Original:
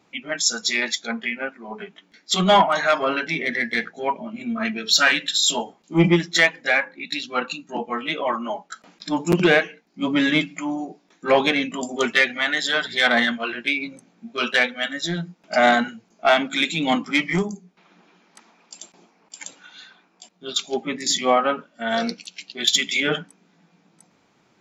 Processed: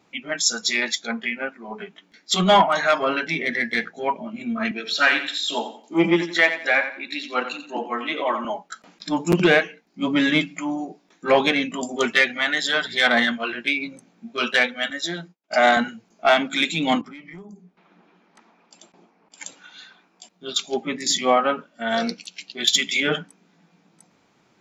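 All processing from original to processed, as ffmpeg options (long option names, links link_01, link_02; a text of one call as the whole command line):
ffmpeg -i in.wav -filter_complex "[0:a]asettb=1/sr,asplit=3[link_01][link_02][link_03];[link_01]atrim=end=4.714[link_04];[link_02]atrim=start=4.71:end=8.45,asetpts=PTS-STARTPTS,afade=type=in:duration=0.004:curve=qsin,afade=type=out:start_time=3.736:duration=0.004:curve=qsin,highpass=frequency=230:width=0.5412,highpass=frequency=230:width=1.3066,acrossover=split=3400[link_05][link_06];[link_06]acompressor=threshold=-36dB:ratio=4:attack=1:release=60[link_07];[link_05][link_07]amix=inputs=2:normalize=0,aecho=1:1:88|176|264:0.299|0.0896|0.0269,atrim=end_sample=164934[link_08];[link_03]atrim=start=8.446[link_09];[link_04][link_08]acrossfade=duration=0.004:curve1=hsin:curve2=qsin[link_10];[link_10][link_09]acrossfade=duration=0.004:curve1=qsin:curve2=hsin,asettb=1/sr,asplit=3[link_11][link_12][link_13];[link_11]atrim=end=14.904[link_14];[link_12]atrim=start=14.9:end=15.77,asetpts=PTS-STARTPTS,afade=type=in:duration=0.004:curve=qsin,afade=type=out:start_time=0.866:duration=0.004:curve=qsin,highpass=280,agate=range=-33dB:threshold=-43dB:ratio=3:release=100:detection=peak[link_15];[link_13]atrim=start=15.766[link_16];[link_14][link_15]acrossfade=duration=0.004:curve1=hsin:curve2=qsin[link_17];[link_17][link_16]acrossfade=duration=0.004:curve1=qsin:curve2=hsin,asettb=1/sr,asplit=3[link_18][link_19][link_20];[link_18]atrim=end=17.014[link_21];[link_19]atrim=start=17.01:end=19.38,asetpts=PTS-STARTPTS,afade=type=in:duration=0.004:curve=qsin,afade=type=out:start_time=2.366:duration=0.004:curve=qsin,lowpass=frequency=1800:poles=1,acompressor=threshold=-38dB:ratio=8:attack=3.2:release=140:knee=1:detection=peak[link_22];[link_20]atrim=start=19.376[link_23];[link_21][link_22]acrossfade=duration=0.004:curve1=hsin:curve2=qsin[link_24];[link_24][link_23]acrossfade=duration=0.004:curve1=qsin:curve2=hsin" out.wav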